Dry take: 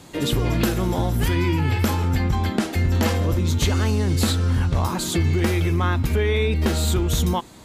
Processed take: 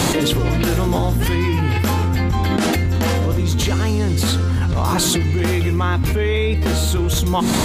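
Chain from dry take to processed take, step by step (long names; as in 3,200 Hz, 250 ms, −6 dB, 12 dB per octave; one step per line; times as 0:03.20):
hum removal 46.35 Hz, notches 8
envelope flattener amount 100%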